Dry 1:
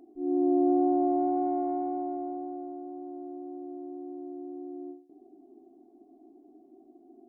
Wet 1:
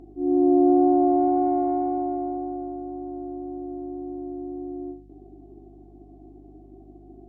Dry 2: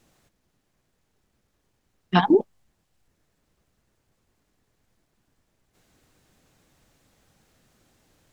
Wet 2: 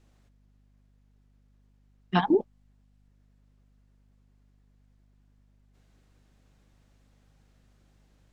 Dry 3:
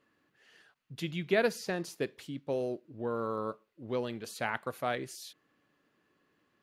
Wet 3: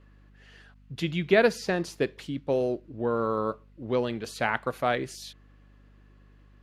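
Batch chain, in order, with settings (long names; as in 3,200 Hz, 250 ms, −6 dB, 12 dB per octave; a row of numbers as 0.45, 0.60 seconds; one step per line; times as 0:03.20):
high-shelf EQ 9,200 Hz −12 dB
mains hum 50 Hz, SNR 26 dB
normalise the peak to −9 dBFS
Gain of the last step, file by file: +6.5, −5.0, +7.0 decibels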